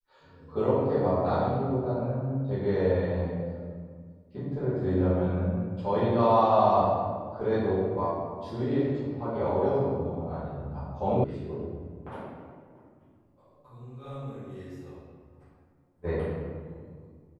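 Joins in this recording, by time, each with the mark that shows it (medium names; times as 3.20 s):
11.24 s: sound stops dead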